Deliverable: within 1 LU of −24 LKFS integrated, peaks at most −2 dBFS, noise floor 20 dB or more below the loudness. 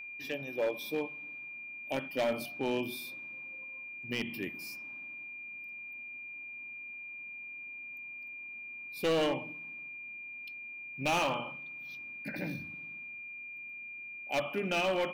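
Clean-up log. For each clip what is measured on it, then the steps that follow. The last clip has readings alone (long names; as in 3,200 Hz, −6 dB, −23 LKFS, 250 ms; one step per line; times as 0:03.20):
share of clipped samples 1.0%; peaks flattened at −25.5 dBFS; interfering tone 2,400 Hz; level of the tone −42 dBFS; integrated loudness −37.0 LKFS; sample peak −25.5 dBFS; target loudness −24.0 LKFS
→ clipped peaks rebuilt −25.5 dBFS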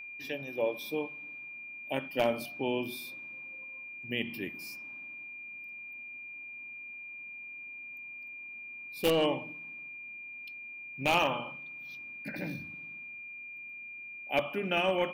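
share of clipped samples 0.0%; interfering tone 2,400 Hz; level of the tone −42 dBFS
→ notch filter 2,400 Hz, Q 30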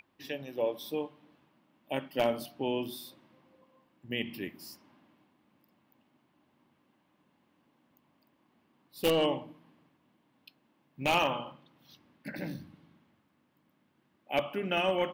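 interfering tone none found; integrated loudness −33.0 LKFS; sample peak −15.5 dBFS; target loudness −24.0 LKFS
→ level +9 dB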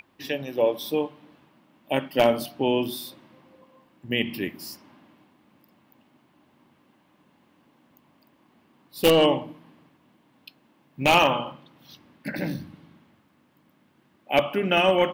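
integrated loudness −24.0 LKFS; sample peak −6.5 dBFS; background noise floor −63 dBFS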